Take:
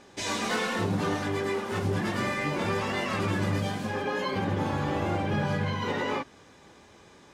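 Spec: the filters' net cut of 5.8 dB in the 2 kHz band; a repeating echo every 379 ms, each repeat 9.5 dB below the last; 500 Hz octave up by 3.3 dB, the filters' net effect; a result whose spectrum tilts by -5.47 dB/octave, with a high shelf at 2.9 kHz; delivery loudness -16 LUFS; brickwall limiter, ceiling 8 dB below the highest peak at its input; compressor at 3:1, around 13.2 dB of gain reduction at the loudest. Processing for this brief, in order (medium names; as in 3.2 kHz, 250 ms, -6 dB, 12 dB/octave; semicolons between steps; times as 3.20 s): peaking EQ 500 Hz +4.5 dB; peaking EQ 2 kHz -6.5 dB; treble shelf 2.9 kHz -3 dB; compression 3:1, threshold -42 dBFS; peak limiter -36.5 dBFS; feedback delay 379 ms, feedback 33%, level -9.5 dB; trim +29 dB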